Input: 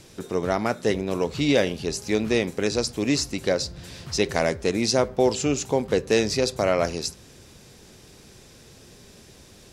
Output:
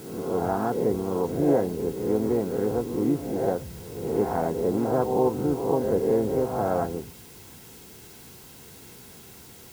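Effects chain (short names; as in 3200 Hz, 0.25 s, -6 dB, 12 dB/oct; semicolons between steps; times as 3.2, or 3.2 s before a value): spectral swells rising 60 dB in 0.89 s; inverse Chebyshev low-pass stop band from 3000 Hz, stop band 50 dB; in parallel at -6 dB: requantised 6-bit, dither triangular; on the sum: harmoniser +3 st -7 dB; notch comb 600 Hz; gain -6 dB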